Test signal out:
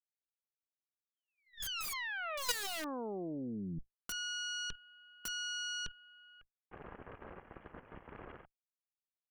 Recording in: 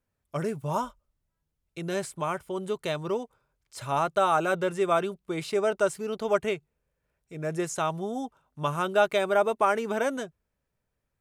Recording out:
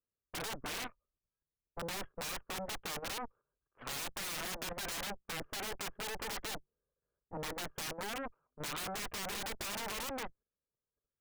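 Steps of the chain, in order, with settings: rippled Chebyshev low-pass 1700 Hz, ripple 9 dB; limiter -25.5 dBFS; added harmonics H 4 -27 dB, 5 -40 dB, 7 -12 dB, 8 -7 dB, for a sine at -25 dBFS; wrapped overs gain 26.5 dB; level quantiser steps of 10 dB

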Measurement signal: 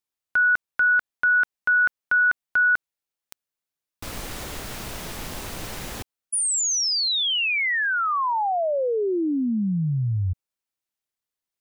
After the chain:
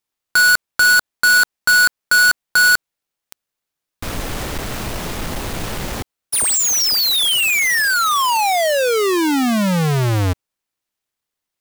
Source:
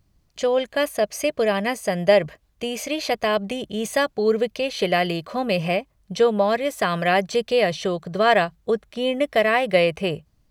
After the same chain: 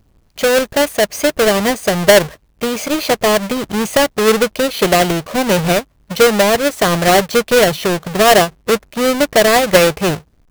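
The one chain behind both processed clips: half-waves squared off; gain +4 dB

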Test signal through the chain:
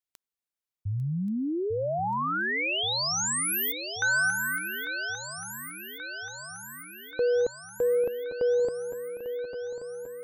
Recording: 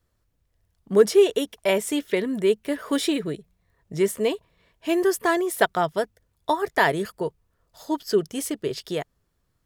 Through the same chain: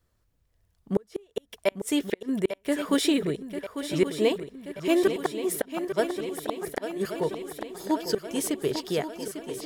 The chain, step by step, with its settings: flipped gate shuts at -12 dBFS, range -38 dB; swung echo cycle 1.13 s, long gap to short 3:1, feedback 63%, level -10 dB

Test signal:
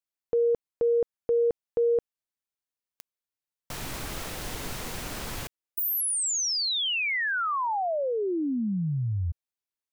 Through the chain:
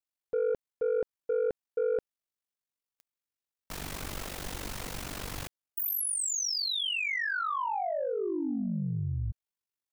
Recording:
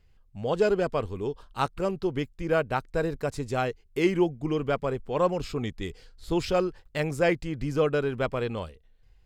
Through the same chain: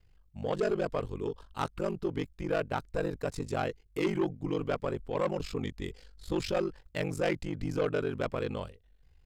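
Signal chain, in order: ring modulator 24 Hz; soft clip -22 dBFS

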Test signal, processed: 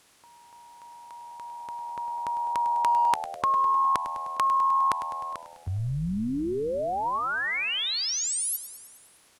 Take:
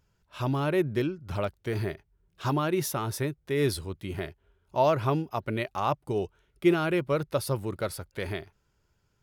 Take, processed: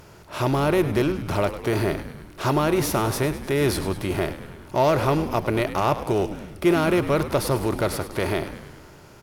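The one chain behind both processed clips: per-bin compression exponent 0.6; frequency-shifting echo 0.102 s, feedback 64%, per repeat -81 Hz, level -13 dB; in parallel at -8 dB: hard clip -22 dBFS

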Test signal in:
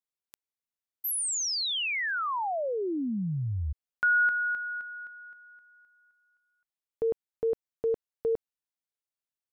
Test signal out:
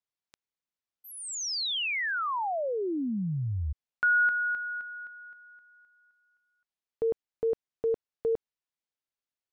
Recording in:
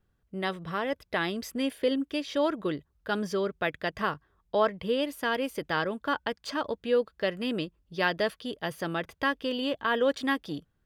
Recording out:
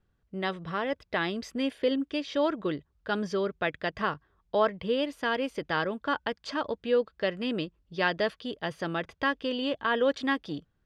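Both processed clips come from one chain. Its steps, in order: LPF 5900 Hz 12 dB/oct

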